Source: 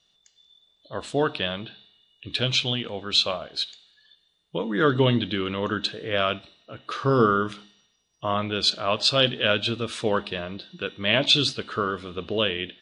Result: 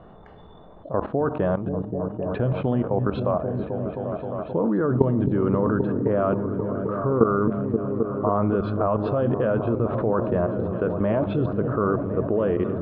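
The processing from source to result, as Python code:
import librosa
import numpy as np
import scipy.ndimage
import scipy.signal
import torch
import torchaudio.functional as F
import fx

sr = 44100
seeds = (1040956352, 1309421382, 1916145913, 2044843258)

y = scipy.signal.sosfilt(scipy.signal.butter(4, 1100.0, 'lowpass', fs=sr, output='sos'), x)
y = fx.level_steps(y, sr, step_db=17)
y = fx.echo_opening(y, sr, ms=264, hz=200, octaves=1, feedback_pct=70, wet_db=-6)
y = fx.env_flatten(y, sr, amount_pct=50)
y = y * librosa.db_to_amplitude(4.0)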